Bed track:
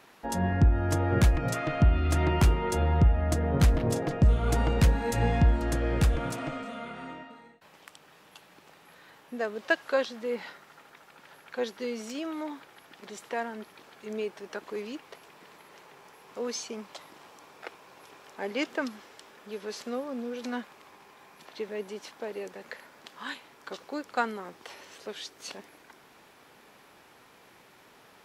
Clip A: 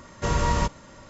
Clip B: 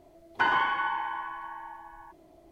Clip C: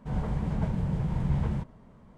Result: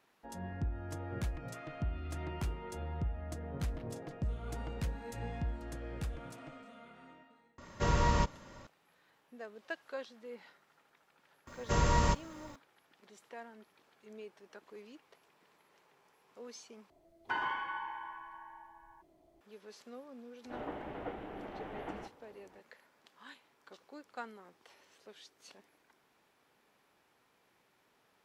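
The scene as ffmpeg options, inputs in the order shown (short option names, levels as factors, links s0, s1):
-filter_complex "[1:a]asplit=2[s0][s1];[0:a]volume=0.168[s2];[s0]lowpass=6300[s3];[s1]acrusher=bits=10:mix=0:aa=0.000001[s4];[3:a]highpass=f=370:t=q:w=0.5412,highpass=f=370:t=q:w=1.307,lowpass=f=3500:t=q:w=0.5176,lowpass=f=3500:t=q:w=0.7071,lowpass=f=3500:t=q:w=1.932,afreqshift=-150[s5];[s2]asplit=2[s6][s7];[s6]atrim=end=16.904[s8];[2:a]atrim=end=2.51,asetpts=PTS-STARTPTS,volume=0.299[s9];[s7]atrim=start=19.406[s10];[s3]atrim=end=1.09,asetpts=PTS-STARTPTS,volume=0.531,afade=t=in:d=0.004:c=hsin,afade=t=out:st=1.086:d=0.004:c=hsin,adelay=7580[s11];[s4]atrim=end=1.09,asetpts=PTS-STARTPTS,volume=0.562,afade=t=in:d=0.004:c=hsin,afade=t=out:st=1.086:d=0.004:c=hsin,adelay=11470[s12];[s5]atrim=end=2.17,asetpts=PTS-STARTPTS,volume=0.944,afade=t=in:d=0.004:c=hsin,afade=t=out:st=2.166:d=0.004:c=hsin,adelay=20440[s13];[s8][s9]acrossfade=d=0.004:c1=hsin:c2=hsin[s14];[s14][s10]acrossfade=d=0.004:c1=hsin:c2=hsin[s15];[s15][s11][s12][s13]amix=inputs=4:normalize=0"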